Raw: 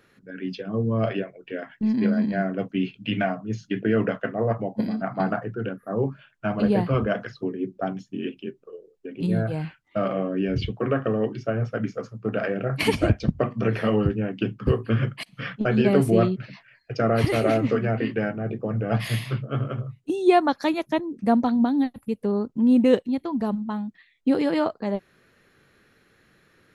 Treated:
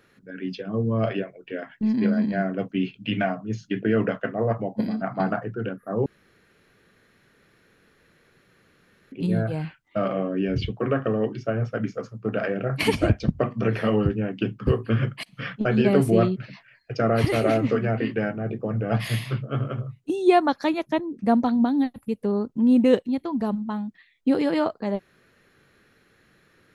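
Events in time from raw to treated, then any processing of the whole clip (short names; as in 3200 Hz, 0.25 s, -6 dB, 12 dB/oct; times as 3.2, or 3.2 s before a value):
6.06–9.12 room tone
20.59–21.29 high shelf 6900 Hz -6.5 dB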